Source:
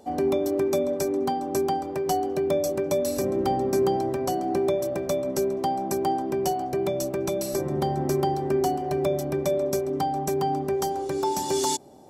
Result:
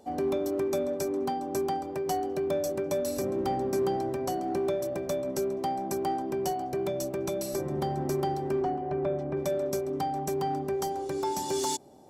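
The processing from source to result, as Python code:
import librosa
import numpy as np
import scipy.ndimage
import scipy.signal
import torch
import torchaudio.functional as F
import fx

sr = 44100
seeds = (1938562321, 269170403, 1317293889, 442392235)

p1 = np.clip(x, -10.0 ** (-23.5 / 20.0), 10.0 ** (-23.5 / 20.0))
p2 = x + F.gain(torch.from_numpy(p1), -8.0).numpy()
p3 = fx.lowpass(p2, sr, hz=2000.0, slope=12, at=(8.62, 9.37))
y = F.gain(torch.from_numpy(p3), -7.0).numpy()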